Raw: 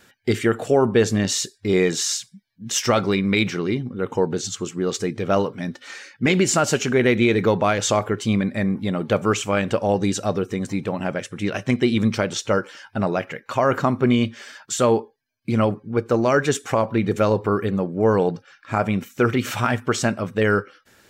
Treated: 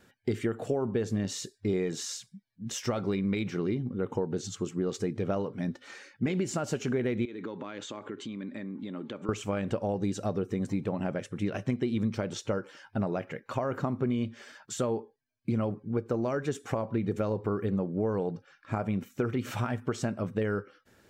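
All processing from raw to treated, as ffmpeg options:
-filter_complex "[0:a]asettb=1/sr,asplit=3[s0][s1][s2];[s0]atrim=end=7.254[s3];[s1]atrim=start=7.25:end=9.29,asetpts=PTS-STARTPTS,afade=t=in:d=0.004:c=qsin,afade=t=out:st=2.036:d=0.004:c=qsin,acompressor=threshold=0.0501:ratio=10:attack=3.2:release=140:knee=1:detection=peak,highpass=270,equalizer=f=280:t=q:w=4:g=6,equalizer=f=470:t=q:w=4:g=-5,equalizer=f=700:t=q:w=4:g=-10,equalizer=f=3500:t=q:w=4:g=4,equalizer=f=5400:t=q:w=4:g=-8,lowpass=f=7300:w=0.5412,lowpass=f=7300:w=1.3066[s4];[s2]atrim=start=9.286[s5];[s3][s4]acrossfade=d=0.004:c1=hsin:c2=qsin[s6];[s6][s5]acrossfade=d=0.004:c1=qsin:c2=hsin,acompressor=threshold=0.0794:ratio=6,tiltshelf=f=930:g=4.5,volume=0.447"

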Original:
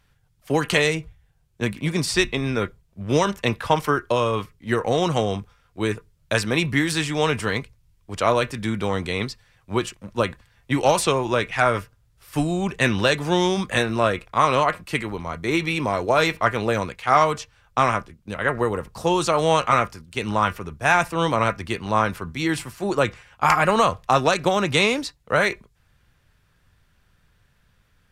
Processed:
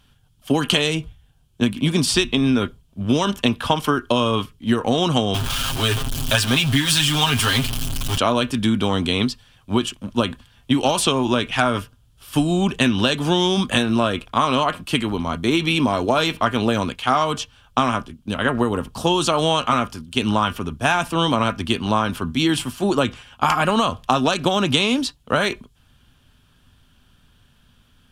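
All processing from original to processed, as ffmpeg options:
-filter_complex "[0:a]asettb=1/sr,asplit=3[s0][s1][s2];[s0]atrim=end=5.344[s3];[s1]atrim=start=5.34:end=8.18,asetpts=PTS-STARTPTS,afade=t=in:d=0.004:c=qsin,afade=t=out:st=2.836:d=0.004:c=qsin,aeval=exprs='val(0)+0.5*0.0631*sgn(val(0))':c=same,equalizer=f=320:w=0.66:g=-9.5,aecho=1:1:7.5:0.78,atrim=end_sample=125244[s4];[s2]atrim=start=8.176[s5];[s3][s4]acrossfade=d=0.004:c1=hsin:c2=qsin[s6];[s6][s5]acrossfade=d=0.004:c1=qsin:c2=hsin,equalizer=f=250:t=o:w=0.33:g=11,equalizer=f=500:t=o:w=0.33:g=-4,equalizer=f=2000:t=o:w=0.33:g=-9,equalizer=f=3150:t=o:w=0.33:g=10,equalizer=f=10000:t=o:w=0.33:g=3,acompressor=threshold=0.112:ratio=6,volume=1.78"

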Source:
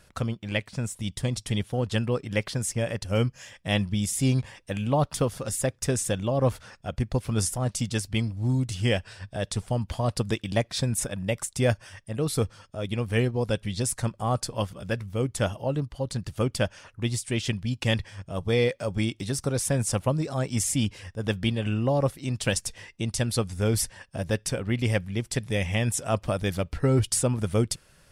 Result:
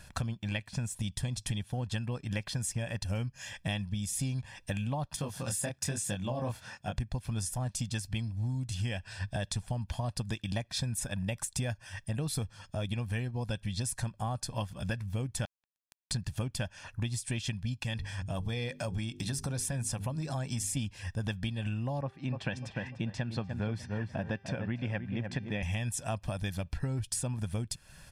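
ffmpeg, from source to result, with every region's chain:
-filter_complex "[0:a]asettb=1/sr,asplit=3[s0][s1][s2];[s0]atrim=end=5.164[s3];[s1]atrim=start=5.16:end=6.98,asetpts=PTS-STARTPTS,afade=t=in:d=0.004:c=qsin,afade=t=out:st=1.816:d=0.004:c=qsin,highpass=110,flanger=delay=19.5:depth=7:speed=1.1[s4];[s2]atrim=start=6.976[s5];[s3][s4]acrossfade=d=0.004:c1=hsin:c2=qsin[s6];[s6][s5]acrossfade=d=0.004:c1=qsin:c2=hsin,asettb=1/sr,asplit=3[s7][s8][s9];[s7]atrim=end=15.454[s10];[s8]atrim=start=15.45:end=16.11,asetpts=PTS-STARTPTS,afade=t=in:d=0.004:c=qsin,afade=t=out:st=0.656:d=0.004:c=qsin,highpass=f=1200:p=1,acompressor=threshold=0.00794:ratio=6:attack=3.2:release=140:knee=1:detection=peak,acrusher=bits=4:mix=0:aa=0.5[s11];[s9]atrim=start=16.106[s12];[s10][s11]acrossfade=d=0.004:c1=hsin:c2=qsin[s13];[s13][s12]acrossfade=d=0.004:c1=qsin:c2=hsin,asettb=1/sr,asplit=3[s14][s15][s16];[s14]atrim=end=17.824[s17];[s15]atrim=start=17.82:end=20.77,asetpts=PTS-STARTPTS,afade=t=in:d=0.004:c=qsin,afade=t=out:st=2.946:d=0.004:c=qsin,bandreject=f=50:t=h:w=6,bandreject=f=100:t=h:w=6,bandreject=f=150:t=h:w=6,bandreject=f=200:t=h:w=6,bandreject=f=250:t=h:w=6,bandreject=f=300:t=h:w=6,bandreject=f=350:t=h:w=6,bandreject=f=400:t=h:w=6,bandreject=f=450:t=h:w=6,acompressor=threshold=0.0224:ratio=2:attack=3.2:release=140:knee=1:detection=peak[s18];[s16]atrim=start=20.766[s19];[s17][s18]acrossfade=d=0.004:c1=hsin:c2=qsin[s20];[s20][s19]acrossfade=d=0.004:c1=qsin:c2=hsin,asettb=1/sr,asplit=3[s21][s22][s23];[s21]atrim=end=22.014[s24];[s22]atrim=start=22.01:end=25.63,asetpts=PTS-STARTPTS,afade=t=in:d=0.004:c=qsin,afade=t=out:st=3.616:d=0.004:c=qsin,highpass=140,lowpass=2300,bandreject=f=394.3:t=h:w=4,bandreject=f=788.6:t=h:w=4,bandreject=f=1182.9:t=h:w=4,bandreject=f=1577.2:t=h:w=4,bandreject=f=1971.5:t=h:w=4,bandreject=f=2365.8:t=h:w=4,bandreject=f=2760.1:t=h:w=4,bandreject=f=3154.4:t=h:w=4,bandreject=f=3548.7:t=h:w=4,bandreject=f=3943:t=h:w=4,bandreject=f=4337.3:t=h:w=4,bandreject=f=4731.6:t=h:w=4,bandreject=f=5125.9:t=h:w=4,bandreject=f=5520.2:t=h:w=4,bandreject=f=5914.5:t=h:w=4,bandreject=f=6308.8:t=h:w=4,asplit=2[s25][s26];[s26]adelay=297,lowpass=f=1400:p=1,volume=0.398,asplit=2[s27][s28];[s28]adelay=297,lowpass=f=1400:p=1,volume=0.28,asplit=2[s29][s30];[s30]adelay=297,lowpass=f=1400:p=1,volume=0.28[s31];[s25][s27][s29][s31]amix=inputs=4:normalize=0,atrim=end_sample=159642[s32];[s23]atrim=start=25.626[s33];[s24][s32]acrossfade=d=0.004:c1=hsin:c2=qsin[s34];[s34][s33]acrossfade=d=0.004:c1=qsin:c2=hsin,equalizer=f=530:t=o:w=1.9:g=-3,aecho=1:1:1.2:0.48,acompressor=threshold=0.02:ratio=12,volume=1.5"

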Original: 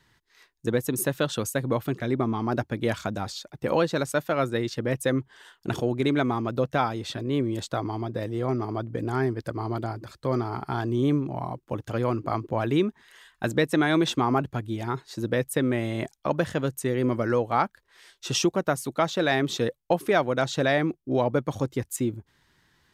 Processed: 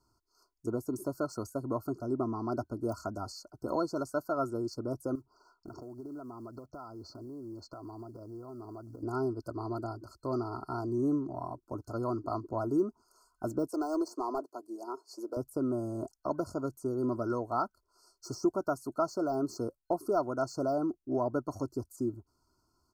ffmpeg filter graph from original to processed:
-filter_complex "[0:a]asettb=1/sr,asplit=3[s0][s1][s2];[s0]atrim=end=5.154[s3];[s1]atrim=start=5.15:end=9.03,asetpts=PTS-STARTPTS,afade=t=in:d=0.004:c=qsin,afade=t=out:st=3.876:d=0.004:c=qsin,lowpass=f=5300:w=0.5412,lowpass=f=5300:w=1.3066,acrusher=bits=8:mode=log:mix=0:aa=0.000001,acompressor=threshold=0.02:ratio=6:attack=3.2:release=140:knee=1:detection=peak[s4];[s2]atrim=start=9.026[s5];[s3][s4]acrossfade=d=0.004:c1=hsin:c2=qsin[s6];[s6][s5]acrossfade=d=0.004:c1=qsin:c2=hsin,asettb=1/sr,asplit=3[s7][s8][s9];[s7]atrim=end=13.684[s10];[s8]atrim=start=13.68:end=15.37,asetpts=PTS-STARTPTS,afade=t=in:d=0.004:c=qsin,afade=t=out:st=1.686:d=0.004:c=qsin,highpass=f=350:w=0.5412,highpass=f=350:w=1.3066,equalizer=f=1400:w=3.5:g=-8.5,asoftclip=type=hard:threshold=0.106[s11];[s9]atrim=start=15.366[s12];[s10][s11]acrossfade=d=0.004:c1=hsin:c2=qsin[s13];[s13][s12]acrossfade=d=0.004:c1=qsin:c2=hsin,deesser=0.8,afftfilt=real='re*(1-between(b*sr/4096,1500,4200))':imag='im*(1-between(b*sr/4096,1500,4200))':win_size=4096:overlap=0.75,aecho=1:1:3:0.58,volume=0.398"

